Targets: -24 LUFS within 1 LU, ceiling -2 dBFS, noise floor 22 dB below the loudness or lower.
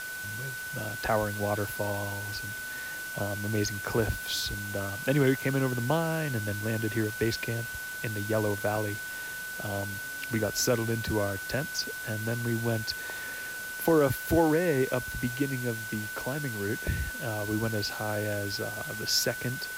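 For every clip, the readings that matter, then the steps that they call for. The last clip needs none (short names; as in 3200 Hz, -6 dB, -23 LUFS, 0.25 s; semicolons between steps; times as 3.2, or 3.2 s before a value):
steady tone 1500 Hz; tone level -36 dBFS; noise floor -38 dBFS; noise floor target -52 dBFS; loudness -30.0 LUFS; peak -13.0 dBFS; loudness target -24.0 LUFS
-> notch 1500 Hz, Q 30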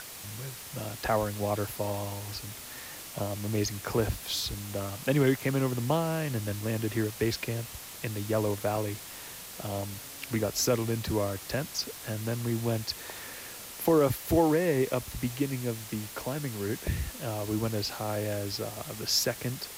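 steady tone none; noise floor -44 dBFS; noise floor target -53 dBFS
-> denoiser 9 dB, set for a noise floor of -44 dBFS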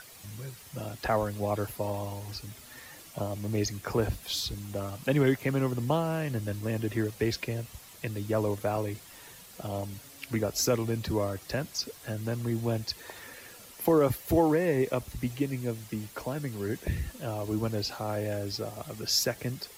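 noise floor -50 dBFS; noise floor target -53 dBFS
-> denoiser 6 dB, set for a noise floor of -50 dBFS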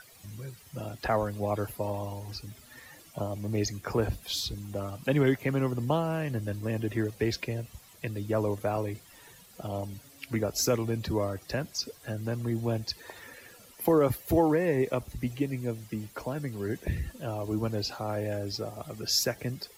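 noise floor -55 dBFS; loudness -31.0 LUFS; peak -13.5 dBFS; loudness target -24.0 LUFS
-> gain +7 dB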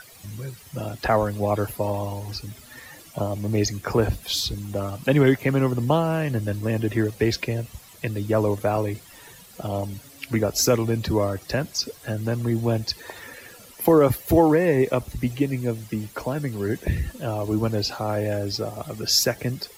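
loudness -24.0 LUFS; peak -6.5 dBFS; noise floor -48 dBFS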